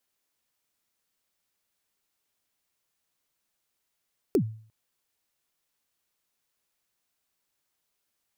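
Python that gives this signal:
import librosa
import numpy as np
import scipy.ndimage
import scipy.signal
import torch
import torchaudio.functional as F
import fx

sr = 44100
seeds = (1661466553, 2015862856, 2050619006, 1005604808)

y = fx.drum_kick(sr, seeds[0], length_s=0.35, level_db=-16.0, start_hz=450.0, end_hz=110.0, sweep_ms=82.0, decay_s=0.48, click=True)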